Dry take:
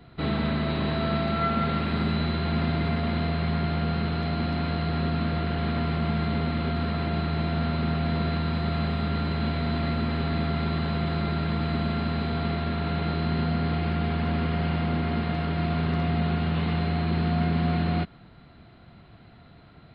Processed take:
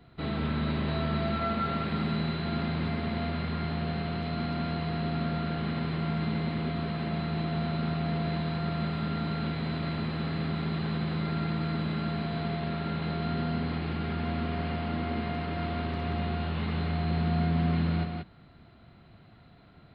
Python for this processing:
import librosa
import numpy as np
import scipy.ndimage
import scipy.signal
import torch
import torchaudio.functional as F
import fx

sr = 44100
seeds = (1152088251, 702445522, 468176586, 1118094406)

p1 = x + fx.echo_single(x, sr, ms=182, db=-4.5, dry=0)
y = F.gain(torch.from_numpy(p1), -5.5).numpy()